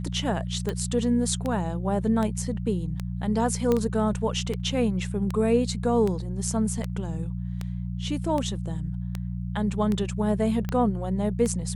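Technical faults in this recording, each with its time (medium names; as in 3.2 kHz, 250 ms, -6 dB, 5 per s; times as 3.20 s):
hum 60 Hz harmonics 3 -31 dBFS
tick 78 rpm -16 dBFS
3.72 s: pop -12 dBFS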